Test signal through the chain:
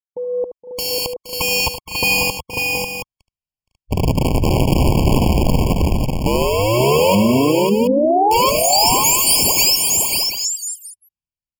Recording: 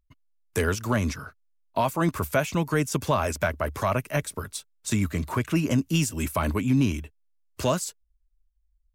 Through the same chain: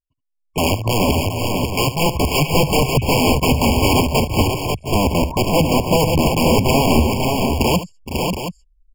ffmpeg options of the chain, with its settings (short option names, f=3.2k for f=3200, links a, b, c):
-filter_complex "[0:a]lowpass=6.3k,afwtdn=0.0158,asubboost=boost=11:cutoff=120,dynaudnorm=f=130:g=7:m=15.5dB,aeval=exprs='(mod(2.66*val(0)+1,2)-1)/2.66':c=same,asplit=2[a][b];[b]aecho=0:1:74|469|505|543|723:0.224|0.211|0.251|0.596|0.355[c];[a][c]amix=inputs=2:normalize=0,afftfilt=real='re*eq(mod(floor(b*sr/1024/1100),2),0)':imag='im*eq(mod(floor(b*sr/1024/1100),2),0)':win_size=1024:overlap=0.75,volume=-2dB"